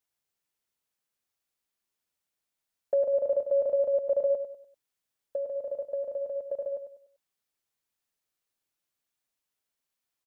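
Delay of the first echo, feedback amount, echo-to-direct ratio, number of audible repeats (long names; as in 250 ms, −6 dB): 98 ms, 35%, −8.5 dB, 3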